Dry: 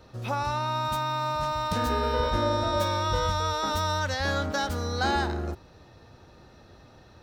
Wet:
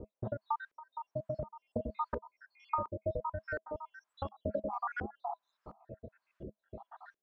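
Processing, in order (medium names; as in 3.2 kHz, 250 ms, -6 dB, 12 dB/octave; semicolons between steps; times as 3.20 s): random holes in the spectrogram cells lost 85%; compression 16:1, threshold -42 dBFS, peak gain reduction 20.5 dB; added noise violet -65 dBFS; small resonant body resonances 210/640/1000/1600 Hz, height 7 dB, ringing for 85 ms; LFO low-pass saw up 1.4 Hz 390–1600 Hz; trim +5.5 dB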